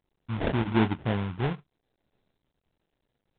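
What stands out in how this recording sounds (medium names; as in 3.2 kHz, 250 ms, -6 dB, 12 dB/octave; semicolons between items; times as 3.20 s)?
phasing stages 2, 1.3 Hz, lowest notch 540–1400 Hz; aliases and images of a low sample rate 1.2 kHz, jitter 20%; G.726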